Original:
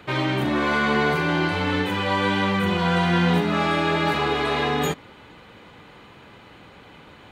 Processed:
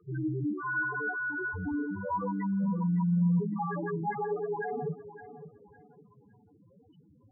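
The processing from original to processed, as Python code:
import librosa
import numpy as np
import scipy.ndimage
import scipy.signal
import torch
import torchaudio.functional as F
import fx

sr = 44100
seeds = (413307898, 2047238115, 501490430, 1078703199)

y = fx.highpass(x, sr, hz=500.0, slope=6, at=(0.53, 1.54))
y = fx.spec_topn(y, sr, count=2)
y = fx.echo_feedback(y, sr, ms=560, feedback_pct=28, wet_db=-14.0)
y = y * 10.0 ** (-2.5 / 20.0)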